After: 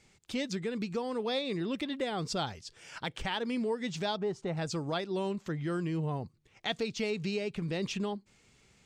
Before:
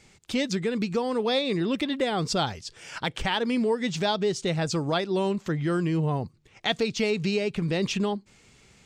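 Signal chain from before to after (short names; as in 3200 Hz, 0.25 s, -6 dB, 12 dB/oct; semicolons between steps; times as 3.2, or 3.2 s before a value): 4.17–4.57 EQ curve 530 Hz 0 dB, 820 Hz +8 dB, 3600 Hz -12 dB; gain -7.5 dB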